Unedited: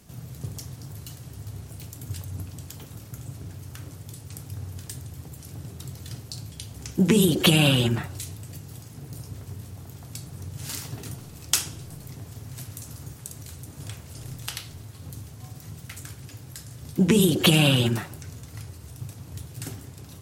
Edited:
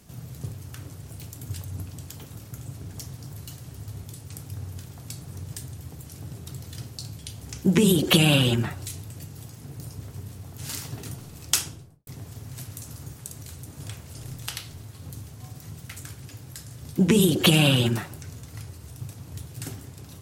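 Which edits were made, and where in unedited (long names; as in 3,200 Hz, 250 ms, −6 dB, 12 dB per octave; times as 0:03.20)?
0:00.53–0:01.63: swap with 0:03.54–0:04.04
0:09.91–0:10.58: move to 0:04.86
0:11.58–0:12.07: fade out and dull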